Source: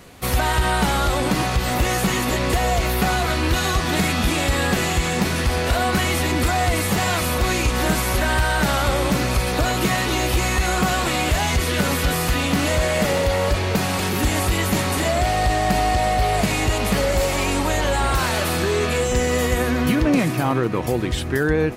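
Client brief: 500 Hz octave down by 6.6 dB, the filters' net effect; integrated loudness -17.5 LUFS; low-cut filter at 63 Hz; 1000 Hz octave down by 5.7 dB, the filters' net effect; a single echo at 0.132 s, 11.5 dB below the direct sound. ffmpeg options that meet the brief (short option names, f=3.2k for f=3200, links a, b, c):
-af "highpass=63,equalizer=f=500:t=o:g=-7,equalizer=f=1k:t=o:g=-5,aecho=1:1:132:0.266,volume=4.5dB"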